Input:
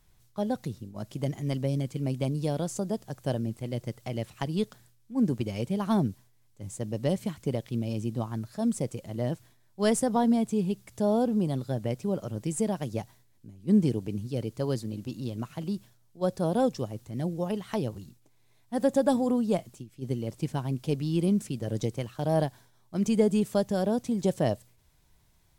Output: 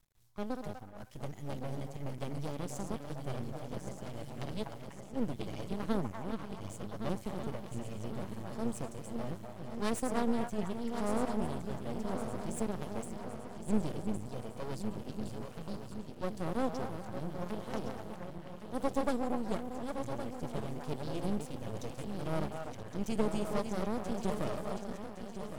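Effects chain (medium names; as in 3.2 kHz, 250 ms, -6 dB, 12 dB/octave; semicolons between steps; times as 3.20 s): backward echo that repeats 557 ms, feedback 71%, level -7 dB; repeats whose band climbs or falls 245 ms, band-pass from 910 Hz, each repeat 0.7 oct, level -4 dB; half-wave rectifier; trim -5 dB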